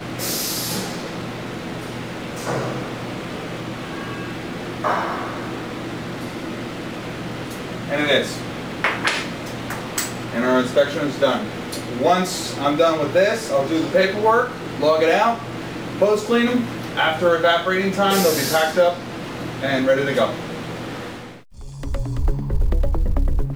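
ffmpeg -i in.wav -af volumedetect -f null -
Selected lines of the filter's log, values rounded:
mean_volume: -21.2 dB
max_volume: -4.4 dB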